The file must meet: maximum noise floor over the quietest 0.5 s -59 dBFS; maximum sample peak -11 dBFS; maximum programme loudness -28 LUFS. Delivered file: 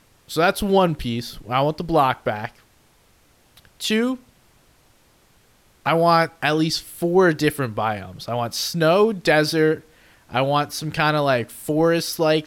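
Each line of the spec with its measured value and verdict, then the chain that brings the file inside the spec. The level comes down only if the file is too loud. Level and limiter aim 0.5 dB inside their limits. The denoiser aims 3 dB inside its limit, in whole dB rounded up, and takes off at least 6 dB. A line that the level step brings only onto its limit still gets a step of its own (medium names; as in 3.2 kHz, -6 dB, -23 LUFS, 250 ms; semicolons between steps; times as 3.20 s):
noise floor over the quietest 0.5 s -57 dBFS: fail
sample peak -5.5 dBFS: fail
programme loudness -20.5 LUFS: fail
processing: trim -8 dB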